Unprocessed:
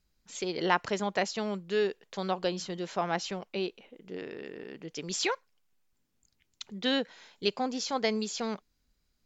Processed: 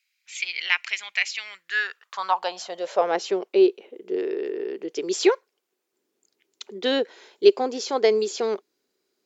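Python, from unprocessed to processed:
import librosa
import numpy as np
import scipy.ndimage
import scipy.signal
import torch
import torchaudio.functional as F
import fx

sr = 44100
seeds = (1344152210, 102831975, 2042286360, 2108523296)

y = fx.filter_sweep_highpass(x, sr, from_hz=2300.0, to_hz=380.0, start_s=1.4, end_s=3.27, q=5.7)
y = y * 10.0 ** (3.0 / 20.0)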